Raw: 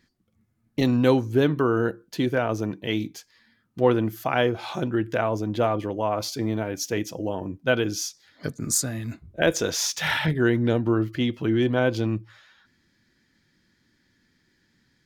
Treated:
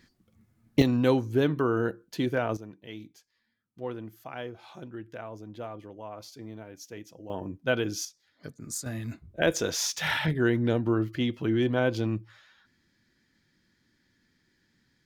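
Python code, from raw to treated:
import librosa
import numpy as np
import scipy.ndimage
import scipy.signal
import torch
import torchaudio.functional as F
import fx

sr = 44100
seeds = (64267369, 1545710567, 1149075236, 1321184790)

y = fx.gain(x, sr, db=fx.steps((0.0, 4.5), (0.82, -4.0), (2.57, -16.0), (7.3, -4.5), (8.05, -12.0), (8.86, -3.5)))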